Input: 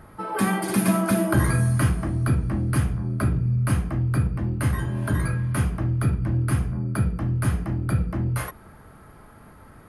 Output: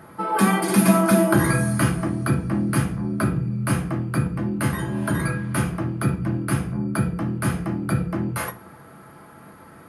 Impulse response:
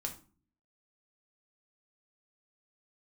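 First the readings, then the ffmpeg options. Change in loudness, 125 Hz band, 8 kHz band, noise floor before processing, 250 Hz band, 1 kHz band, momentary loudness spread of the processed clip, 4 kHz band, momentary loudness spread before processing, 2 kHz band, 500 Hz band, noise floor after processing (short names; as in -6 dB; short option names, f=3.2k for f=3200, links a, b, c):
+1.5 dB, -2.0 dB, +4.0 dB, -48 dBFS, +4.5 dB, +5.0 dB, 9 LU, n/a, 5 LU, +4.0 dB, +5.5 dB, -46 dBFS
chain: -filter_complex "[0:a]highpass=140,asplit=2[a][b];[1:a]atrim=start_sample=2205,adelay=6[c];[b][c]afir=irnorm=-1:irlink=0,volume=-6.5dB[d];[a][d]amix=inputs=2:normalize=0,volume=3.5dB"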